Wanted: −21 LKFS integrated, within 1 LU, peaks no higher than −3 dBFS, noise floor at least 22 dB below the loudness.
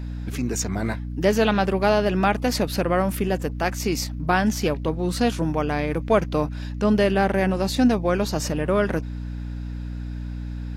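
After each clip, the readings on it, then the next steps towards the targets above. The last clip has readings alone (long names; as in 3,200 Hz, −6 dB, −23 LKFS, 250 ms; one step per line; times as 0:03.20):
mains hum 60 Hz; hum harmonics up to 300 Hz; level of the hum −28 dBFS; integrated loudness −23.5 LKFS; sample peak −7.0 dBFS; target loudness −21.0 LKFS
→ mains-hum notches 60/120/180/240/300 Hz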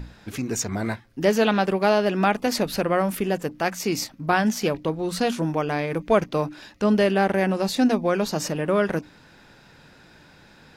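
mains hum none found; integrated loudness −23.5 LKFS; sample peak −7.5 dBFS; target loudness −21.0 LKFS
→ level +2.5 dB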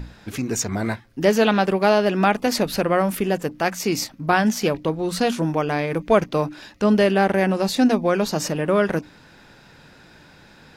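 integrated loudness −21.0 LKFS; sample peak −5.0 dBFS; background noise floor −50 dBFS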